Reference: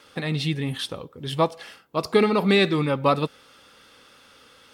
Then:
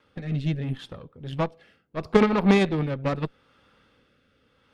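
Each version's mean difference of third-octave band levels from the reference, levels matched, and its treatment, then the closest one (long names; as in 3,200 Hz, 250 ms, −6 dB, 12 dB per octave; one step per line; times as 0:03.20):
6.5 dB: bass and treble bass +8 dB, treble −14 dB
harmonic generator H 3 −14 dB, 7 −44 dB, 8 −26 dB, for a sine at −4.5 dBFS
rotating-speaker cabinet horn 0.75 Hz
level +2 dB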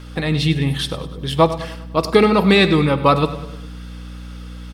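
4.5 dB: mains hum 60 Hz, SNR 17 dB
on a send: repeating echo 100 ms, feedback 50%, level −15 dB
on the sum: rectangular room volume 3,600 cubic metres, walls furnished, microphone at 0.61 metres
level +6 dB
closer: second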